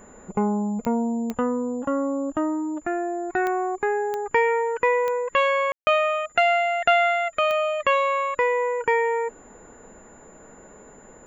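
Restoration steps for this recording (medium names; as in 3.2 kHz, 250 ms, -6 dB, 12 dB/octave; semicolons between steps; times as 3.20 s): de-click; band-stop 7.1 kHz, Q 30; room tone fill 5.72–5.87 s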